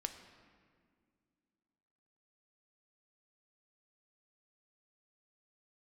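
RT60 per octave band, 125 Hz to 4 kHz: 2.5, 3.0, 2.2, 1.8, 1.7, 1.2 s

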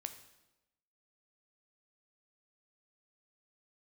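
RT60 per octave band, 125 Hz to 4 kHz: 1.0, 1.0, 1.1, 0.95, 0.90, 0.85 s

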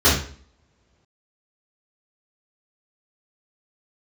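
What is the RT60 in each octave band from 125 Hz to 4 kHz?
1.1, 0.65, 0.55, 0.45, 0.45, 0.40 s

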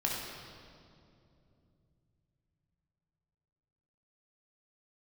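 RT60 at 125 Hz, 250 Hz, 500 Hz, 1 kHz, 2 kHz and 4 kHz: 5.2, 3.9, 3.1, 2.3, 1.8, 1.8 s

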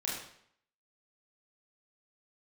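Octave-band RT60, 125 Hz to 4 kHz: 0.65, 0.65, 0.65, 0.65, 0.65, 0.60 s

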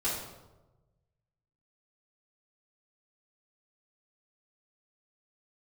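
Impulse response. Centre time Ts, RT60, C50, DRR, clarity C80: 56 ms, 1.1 s, 1.5 dB, -11.5 dB, 5.0 dB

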